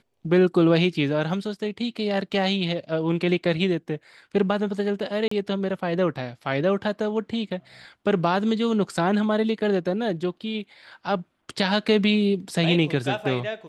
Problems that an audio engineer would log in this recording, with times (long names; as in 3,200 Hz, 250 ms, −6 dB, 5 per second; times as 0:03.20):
0:05.28–0:05.31: drop-out 34 ms